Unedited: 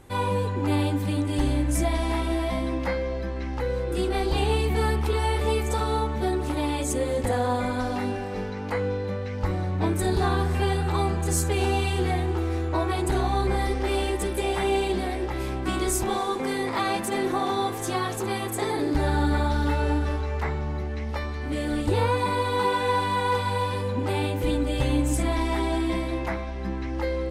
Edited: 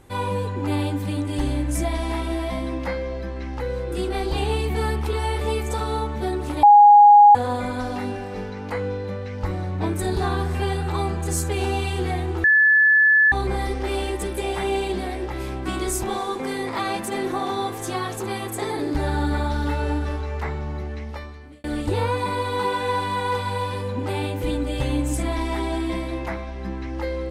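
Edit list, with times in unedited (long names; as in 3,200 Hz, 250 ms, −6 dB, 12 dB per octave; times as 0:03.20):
0:06.63–0:07.35: beep over 825 Hz −6.5 dBFS
0:12.44–0:13.32: beep over 1,730 Hz −12 dBFS
0:20.90–0:21.64: fade out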